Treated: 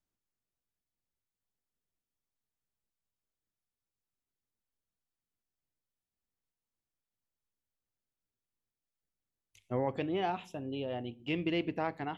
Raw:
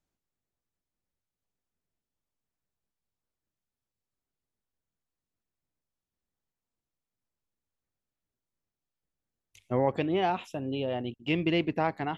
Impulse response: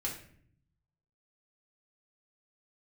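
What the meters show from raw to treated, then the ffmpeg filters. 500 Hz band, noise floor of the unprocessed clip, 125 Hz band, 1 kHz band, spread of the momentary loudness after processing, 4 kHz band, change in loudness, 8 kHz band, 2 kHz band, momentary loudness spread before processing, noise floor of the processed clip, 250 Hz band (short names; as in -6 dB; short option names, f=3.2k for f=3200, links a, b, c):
-6.0 dB, under -85 dBFS, -6.5 dB, -6.0 dB, 7 LU, -5.5 dB, -5.5 dB, n/a, -5.5 dB, 6 LU, under -85 dBFS, -5.5 dB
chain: -filter_complex "[0:a]asplit=2[a][b];[1:a]atrim=start_sample=2205,asetrate=66150,aresample=44100[c];[b][c]afir=irnorm=-1:irlink=0,volume=-13dB[d];[a][d]amix=inputs=2:normalize=0,volume=-6.5dB"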